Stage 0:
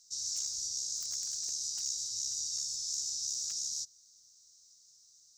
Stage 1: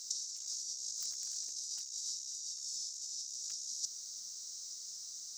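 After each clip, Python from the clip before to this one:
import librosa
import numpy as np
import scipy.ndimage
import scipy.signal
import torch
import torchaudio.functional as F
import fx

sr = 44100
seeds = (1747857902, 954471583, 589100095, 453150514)

y = scipy.signal.sosfilt(scipy.signal.butter(4, 180.0, 'highpass', fs=sr, output='sos'), x)
y = fx.over_compress(y, sr, threshold_db=-44.0, ratio=-0.5)
y = y * 10.0 ** (5.5 / 20.0)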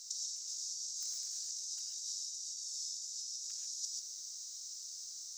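y = fx.highpass(x, sr, hz=750.0, slope=6)
y = fx.rev_gated(y, sr, seeds[0], gate_ms=160, shape='rising', drr_db=0.5)
y = y * 10.0 ** (-3.5 / 20.0)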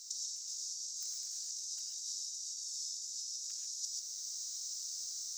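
y = fx.high_shelf(x, sr, hz=11000.0, db=4.0)
y = fx.rider(y, sr, range_db=10, speed_s=0.5)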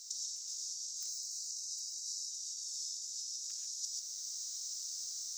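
y = fx.spec_box(x, sr, start_s=1.1, length_s=1.2, low_hz=450.0, high_hz=3800.0, gain_db=-11)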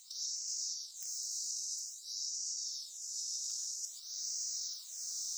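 y = fx.phaser_stages(x, sr, stages=6, low_hz=140.0, high_hz=1000.0, hz=0.51, feedback_pct=0)
y = fx.echo_wet_bandpass(y, sr, ms=204, feedback_pct=82, hz=930.0, wet_db=-12.0)
y = y * 10.0 ** (4.0 / 20.0)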